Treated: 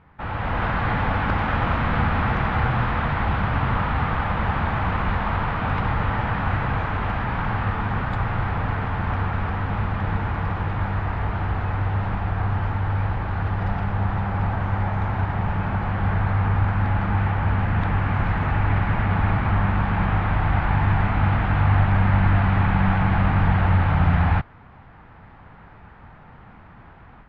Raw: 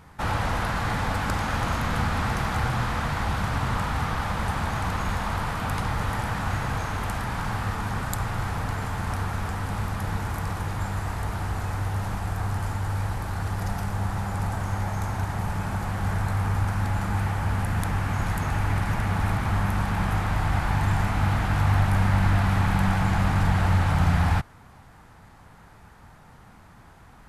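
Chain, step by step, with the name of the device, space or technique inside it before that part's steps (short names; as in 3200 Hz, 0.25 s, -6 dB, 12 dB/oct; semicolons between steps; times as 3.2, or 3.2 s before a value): action camera in a waterproof case (LPF 2900 Hz 24 dB/oct; AGC gain up to 8.5 dB; gain -4 dB; AAC 64 kbps 44100 Hz)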